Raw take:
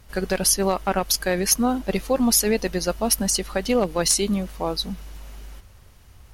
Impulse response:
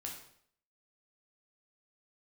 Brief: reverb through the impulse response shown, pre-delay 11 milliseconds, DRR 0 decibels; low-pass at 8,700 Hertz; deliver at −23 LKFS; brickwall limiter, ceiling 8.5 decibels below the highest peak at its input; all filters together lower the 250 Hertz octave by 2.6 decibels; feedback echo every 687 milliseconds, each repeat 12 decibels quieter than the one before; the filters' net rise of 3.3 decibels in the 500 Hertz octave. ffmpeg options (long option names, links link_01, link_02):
-filter_complex "[0:a]lowpass=8700,equalizer=frequency=250:width_type=o:gain=-4.5,equalizer=frequency=500:width_type=o:gain=5,alimiter=limit=-14dB:level=0:latency=1,aecho=1:1:687|1374|2061:0.251|0.0628|0.0157,asplit=2[link_01][link_02];[1:a]atrim=start_sample=2205,adelay=11[link_03];[link_02][link_03]afir=irnorm=-1:irlink=0,volume=2dB[link_04];[link_01][link_04]amix=inputs=2:normalize=0,volume=-1.5dB"